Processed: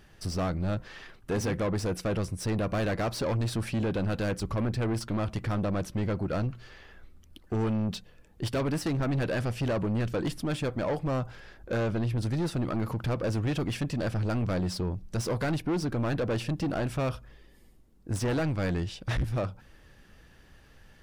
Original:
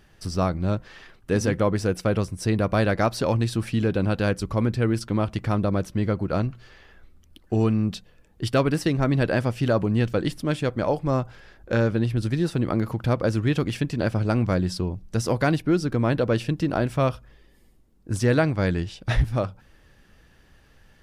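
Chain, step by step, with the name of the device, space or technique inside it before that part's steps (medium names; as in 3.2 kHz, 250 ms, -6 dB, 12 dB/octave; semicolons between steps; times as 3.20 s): saturation between pre-emphasis and de-emphasis (treble shelf 3.1 kHz +10 dB; saturation -24.5 dBFS, distortion -7 dB; treble shelf 3.1 kHz -10 dB)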